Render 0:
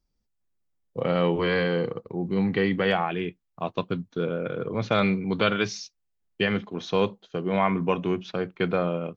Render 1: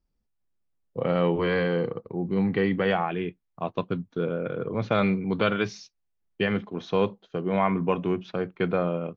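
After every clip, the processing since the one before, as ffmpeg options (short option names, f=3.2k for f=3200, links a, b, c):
-af "highshelf=f=3.9k:g=-11.5"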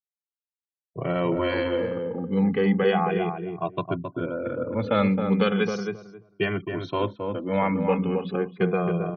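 -filter_complex "[0:a]afftfilt=real='re*gte(hypot(re,im),0.00562)':imag='im*gte(hypot(re,im),0.00562)':win_size=1024:overlap=0.75,asplit=2[a][b];[b]adelay=268,lowpass=f=1.1k:p=1,volume=-4.5dB,asplit=2[c][d];[d]adelay=268,lowpass=f=1.1k:p=1,volume=0.2,asplit=2[e][f];[f]adelay=268,lowpass=f=1.1k:p=1,volume=0.2[g];[c][e][g]amix=inputs=3:normalize=0[h];[a][h]amix=inputs=2:normalize=0,asplit=2[i][j];[j]adelay=2,afreqshift=-0.36[k];[i][k]amix=inputs=2:normalize=1,volume=3.5dB"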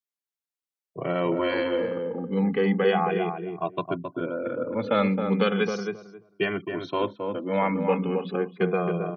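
-af "highpass=180"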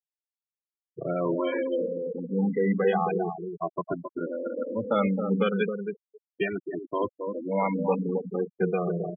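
-af "afftfilt=real='re*gte(hypot(re,im),0.0891)':imag='im*gte(hypot(re,im),0.0891)':win_size=1024:overlap=0.75,volume=-1.5dB"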